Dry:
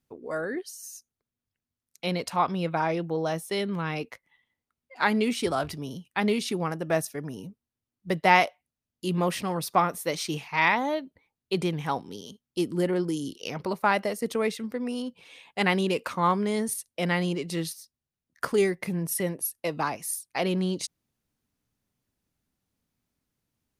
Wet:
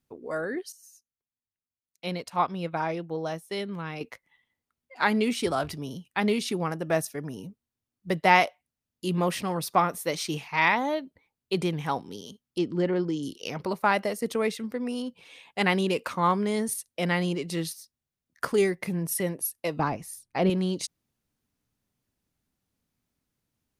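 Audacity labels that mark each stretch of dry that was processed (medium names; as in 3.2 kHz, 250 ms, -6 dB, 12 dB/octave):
0.720000	4.010000	upward expansion, over -48 dBFS
12.580000	13.230000	Bessel low-pass 4.3 kHz, order 6
19.790000	20.500000	tilt EQ -3 dB/octave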